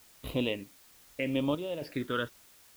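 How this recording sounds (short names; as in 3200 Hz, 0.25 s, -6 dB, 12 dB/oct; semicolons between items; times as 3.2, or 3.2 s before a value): chopped level 1.1 Hz, depth 65%, duty 70%; phasing stages 12, 0.8 Hz, lowest notch 760–1800 Hz; a quantiser's noise floor 10-bit, dither triangular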